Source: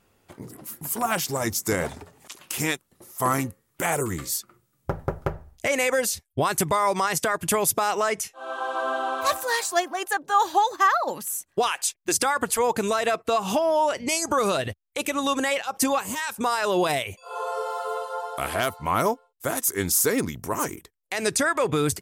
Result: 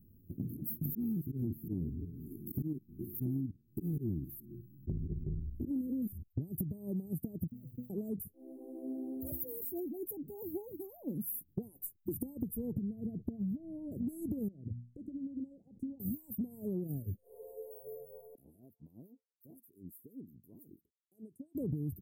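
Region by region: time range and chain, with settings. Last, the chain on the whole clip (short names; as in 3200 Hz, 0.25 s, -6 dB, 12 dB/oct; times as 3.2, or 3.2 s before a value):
0.85–6.28 stepped spectrum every 50 ms + resonant low shelf 490 Hz +9.5 dB, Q 3 + auto swell 0.168 s
7.48–7.9 octave resonator B, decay 0.25 s + sample gate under -52.5 dBFS
12.72–13.92 tone controls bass +9 dB, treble -11 dB + compressor 4:1, threshold -27 dBFS
14.48–16 LPF 6000 Hz 24 dB/oct + notches 60/120/180/240 Hz + compressor 5:1, threshold -39 dBFS
18.35–21.55 compressor 2.5:1, threshold -24 dBFS + LFO band-pass sine 5.8 Hz 980–4000 Hz
whole clip: inverse Chebyshev band-stop 1200–4900 Hz, stop band 80 dB; compressor 12:1, threshold -41 dBFS; gain +7.5 dB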